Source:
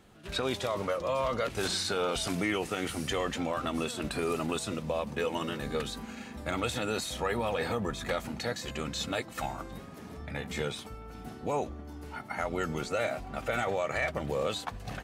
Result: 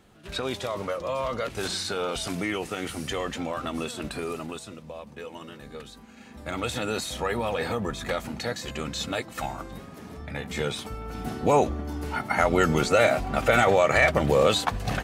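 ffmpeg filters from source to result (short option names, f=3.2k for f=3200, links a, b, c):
-af "volume=20dB,afade=t=out:st=4:d=0.75:silence=0.354813,afade=t=in:st=6.12:d=0.64:silence=0.281838,afade=t=in:st=10.51:d=0.86:silence=0.398107"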